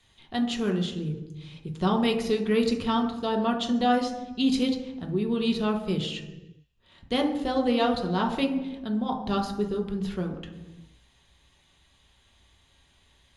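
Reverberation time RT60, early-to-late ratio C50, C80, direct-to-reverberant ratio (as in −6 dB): 1.1 s, 8.5 dB, 11.0 dB, 2.5 dB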